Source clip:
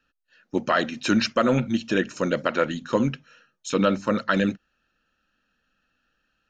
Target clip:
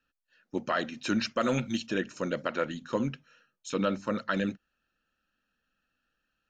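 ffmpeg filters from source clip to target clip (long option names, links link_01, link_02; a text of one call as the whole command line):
ffmpeg -i in.wav -filter_complex "[0:a]asplit=3[link_01][link_02][link_03];[link_01]afade=type=out:start_time=1.4:duration=0.02[link_04];[link_02]highshelf=frequency=2600:gain=11.5,afade=type=in:start_time=1.4:duration=0.02,afade=type=out:start_time=1.85:duration=0.02[link_05];[link_03]afade=type=in:start_time=1.85:duration=0.02[link_06];[link_04][link_05][link_06]amix=inputs=3:normalize=0,volume=-7.5dB" out.wav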